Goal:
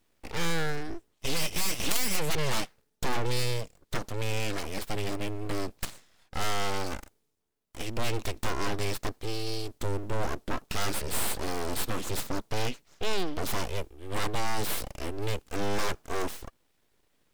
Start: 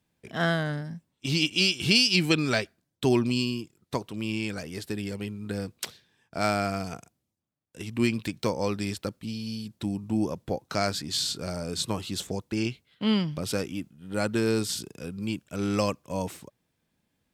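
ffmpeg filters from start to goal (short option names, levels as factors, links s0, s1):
-af "aeval=exprs='abs(val(0))':c=same,aeval=exprs='0.473*(cos(1*acos(clip(val(0)/0.473,-1,1)))-cos(1*PI/2))+0.15*(cos(4*acos(clip(val(0)/0.473,-1,1)))-cos(4*PI/2))':c=same,volume=2.11"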